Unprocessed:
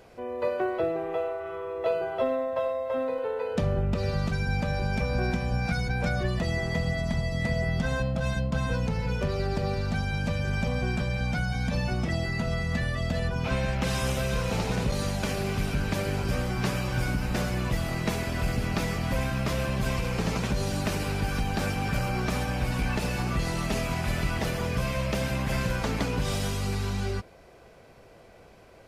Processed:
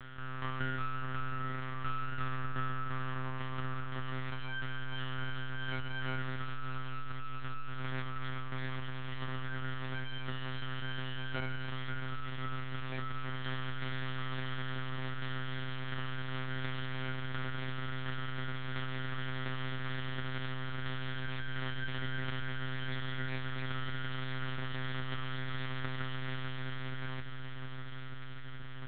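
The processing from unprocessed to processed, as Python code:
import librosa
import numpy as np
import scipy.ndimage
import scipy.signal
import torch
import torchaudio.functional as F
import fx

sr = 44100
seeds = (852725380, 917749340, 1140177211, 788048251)

y = fx.vowel_filter(x, sr, vowel='a')
y = fx.low_shelf(y, sr, hz=460.0, db=-10.5)
y = np.abs(y)
y = fx.echo_alternate(y, sr, ms=596, hz=1800.0, feedback_pct=81, wet_db=-10)
y = fx.lpc_monotone(y, sr, seeds[0], pitch_hz=130.0, order=10)
y = fx.env_flatten(y, sr, amount_pct=50)
y = y * librosa.db_to_amplitude(2.0)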